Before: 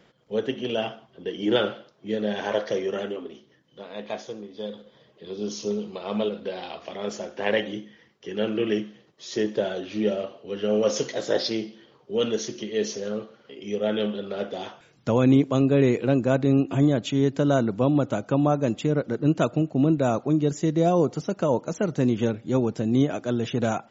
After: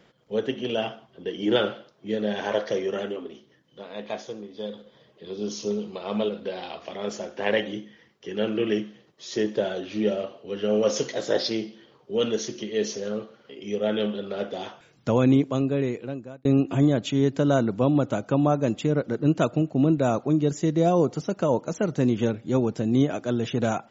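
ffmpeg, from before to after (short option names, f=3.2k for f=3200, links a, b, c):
-filter_complex "[0:a]asplit=2[a][b];[a]atrim=end=16.45,asetpts=PTS-STARTPTS,afade=t=out:st=15.17:d=1.28[c];[b]atrim=start=16.45,asetpts=PTS-STARTPTS,afade=t=in:d=0.004:c=hsin[d];[c][d]concat=n=2:v=0:a=1"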